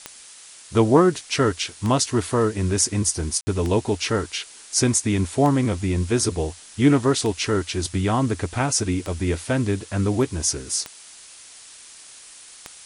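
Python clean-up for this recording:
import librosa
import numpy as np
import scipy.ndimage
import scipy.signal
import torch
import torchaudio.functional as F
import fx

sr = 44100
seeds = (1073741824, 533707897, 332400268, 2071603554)

y = fx.fix_declick_ar(x, sr, threshold=10.0)
y = fx.fix_ambience(y, sr, seeds[0], print_start_s=0.21, print_end_s=0.71, start_s=3.41, end_s=3.47)
y = fx.noise_reduce(y, sr, print_start_s=0.21, print_end_s=0.71, reduce_db=22.0)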